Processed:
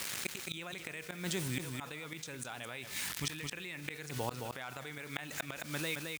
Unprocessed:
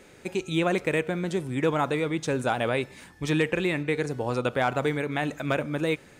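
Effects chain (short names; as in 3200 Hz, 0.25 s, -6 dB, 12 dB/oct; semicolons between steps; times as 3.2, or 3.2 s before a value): ending faded out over 0.78 s; bit-crush 8-bit; HPF 52 Hz 12 dB/oct; passive tone stack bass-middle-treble 5-5-5; flipped gate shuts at -32 dBFS, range -34 dB; low shelf 150 Hz -3.5 dB; echo 0.217 s -16 dB; fast leveller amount 70%; gain +8.5 dB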